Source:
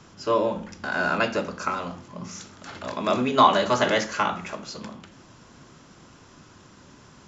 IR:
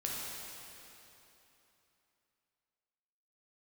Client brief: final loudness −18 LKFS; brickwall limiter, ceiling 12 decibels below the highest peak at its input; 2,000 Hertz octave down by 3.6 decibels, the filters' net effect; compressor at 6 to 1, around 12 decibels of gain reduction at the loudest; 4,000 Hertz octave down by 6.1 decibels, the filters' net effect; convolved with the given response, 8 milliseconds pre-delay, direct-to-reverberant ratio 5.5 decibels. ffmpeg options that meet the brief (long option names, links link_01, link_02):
-filter_complex "[0:a]equalizer=frequency=2000:width_type=o:gain=-4,equalizer=frequency=4000:width_type=o:gain=-6.5,acompressor=threshold=-25dB:ratio=6,alimiter=limit=-24dB:level=0:latency=1,asplit=2[link_01][link_02];[1:a]atrim=start_sample=2205,adelay=8[link_03];[link_02][link_03]afir=irnorm=-1:irlink=0,volume=-9dB[link_04];[link_01][link_04]amix=inputs=2:normalize=0,volume=16dB"